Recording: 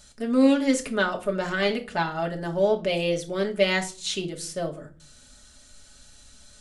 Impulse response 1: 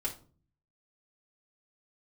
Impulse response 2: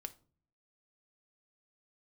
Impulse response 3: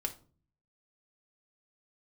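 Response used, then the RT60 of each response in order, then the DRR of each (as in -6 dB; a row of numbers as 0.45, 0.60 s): 3; 0.40, 0.45, 0.40 s; -6.0, 6.0, 0.5 dB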